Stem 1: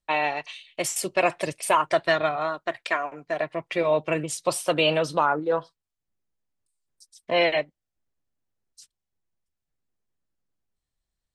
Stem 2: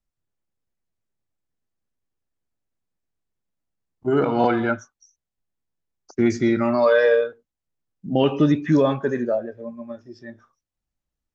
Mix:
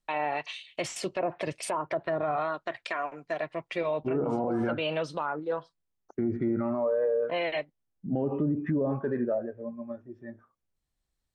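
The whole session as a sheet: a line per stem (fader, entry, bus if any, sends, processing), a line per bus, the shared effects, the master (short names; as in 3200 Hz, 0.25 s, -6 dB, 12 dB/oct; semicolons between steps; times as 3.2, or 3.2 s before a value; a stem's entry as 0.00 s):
+0.5 dB, 0.00 s, no send, auto duck -7 dB, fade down 1.70 s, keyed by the second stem
-3.0 dB, 0.00 s, no send, Wiener smoothing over 9 samples; high shelf 2400 Hz -9.5 dB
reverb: off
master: treble ducked by the level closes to 640 Hz, closed at -16.5 dBFS; limiter -20.5 dBFS, peak gain reduction 11 dB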